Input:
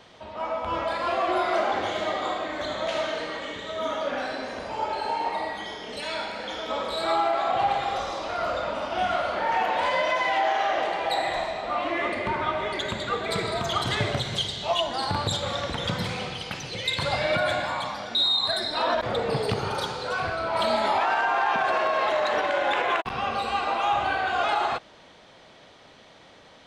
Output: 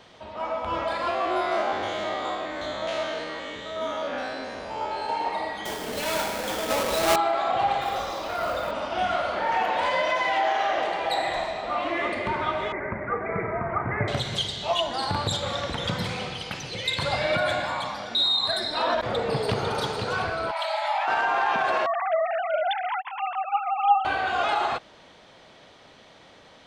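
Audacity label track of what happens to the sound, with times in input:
1.100000	5.090000	stepped spectrum every 50 ms
5.650000	7.160000	half-waves squared off
7.810000	8.710000	companded quantiser 6-bit
12.720000	14.080000	steep low-pass 2300 Hz 96 dB/oct
18.980000	19.740000	echo throw 0.5 s, feedback 30%, level -6 dB
20.510000	21.080000	rippled Chebyshev high-pass 580 Hz, ripple 6 dB
21.860000	24.050000	sine-wave speech

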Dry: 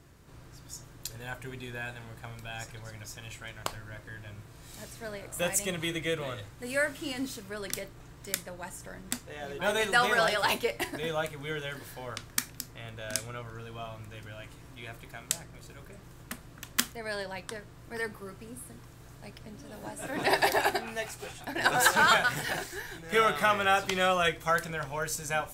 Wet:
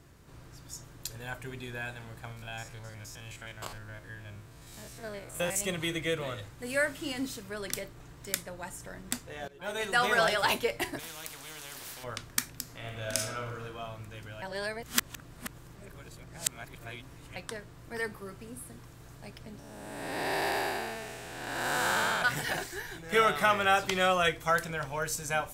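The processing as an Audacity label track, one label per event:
2.320000	5.610000	stepped spectrum every 50 ms
9.480000	10.150000	fade in, from -19.5 dB
10.990000	12.040000	spectral compressor 4:1
12.620000	13.630000	reverb throw, RT60 1 s, DRR 0 dB
14.420000	17.360000	reverse
19.590000	22.220000	time blur width 0.399 s

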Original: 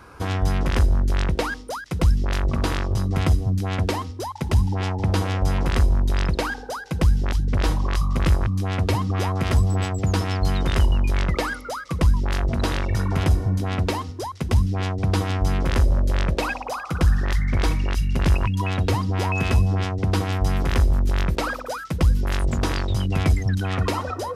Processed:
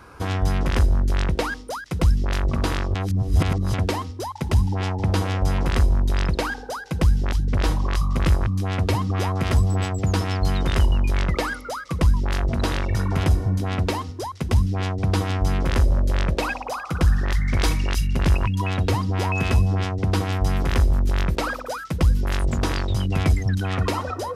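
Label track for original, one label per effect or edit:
2.950000	3.740000	reverse
17.450000	18.070000	high shelf 2900 Hz +7.5 dB

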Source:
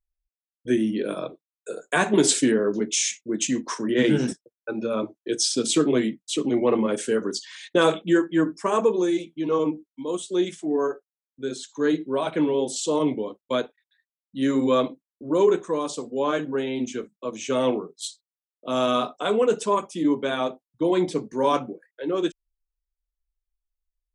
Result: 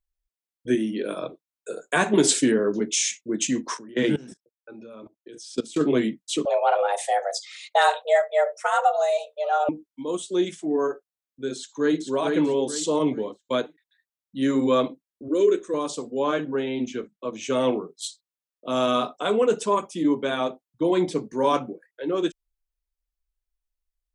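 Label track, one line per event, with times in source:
0.750000	1.230000	HPF 240 Hz 6 dB/oct
3.770000	5.810000	level quantiser steps of 21 dB
6.450000	9.690000	frequency shift +290 Hz
11.560000	12.000000	echo throw 0.44 s, feedback 35%, level -4 dB
15.280000	15.740000	fixed phaser centre 350 Hz, stages 4
16.340000	17.430000	LPF 5200 Hz

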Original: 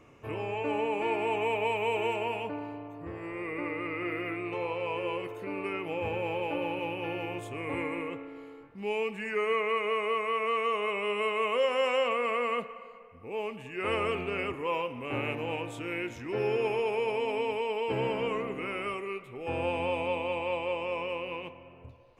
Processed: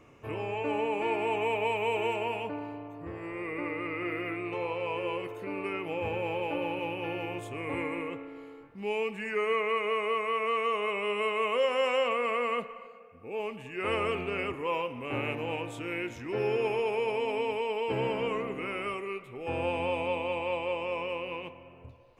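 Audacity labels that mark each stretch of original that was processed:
12.870000	13.400000	notch comb 1000 Hz

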